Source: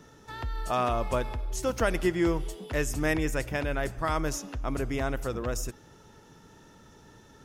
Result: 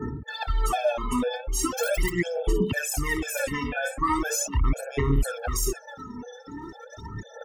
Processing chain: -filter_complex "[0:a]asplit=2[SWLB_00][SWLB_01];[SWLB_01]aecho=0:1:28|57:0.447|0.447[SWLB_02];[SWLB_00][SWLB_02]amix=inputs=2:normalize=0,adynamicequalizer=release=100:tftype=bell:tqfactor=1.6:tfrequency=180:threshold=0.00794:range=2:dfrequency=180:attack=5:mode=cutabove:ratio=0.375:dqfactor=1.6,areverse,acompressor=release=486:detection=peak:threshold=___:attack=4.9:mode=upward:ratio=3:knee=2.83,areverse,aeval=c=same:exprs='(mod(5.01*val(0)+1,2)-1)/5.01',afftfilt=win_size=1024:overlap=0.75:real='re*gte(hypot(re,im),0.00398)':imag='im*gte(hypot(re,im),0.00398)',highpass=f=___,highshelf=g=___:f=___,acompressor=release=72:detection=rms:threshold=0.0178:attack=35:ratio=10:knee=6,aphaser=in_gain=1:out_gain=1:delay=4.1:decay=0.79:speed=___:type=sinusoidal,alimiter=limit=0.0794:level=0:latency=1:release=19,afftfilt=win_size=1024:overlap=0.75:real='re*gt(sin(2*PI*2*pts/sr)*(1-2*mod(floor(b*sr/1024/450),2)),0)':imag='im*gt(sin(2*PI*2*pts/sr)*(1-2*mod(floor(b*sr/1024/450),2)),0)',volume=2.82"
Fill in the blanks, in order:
0.01, 52, 11, 9600, 0.4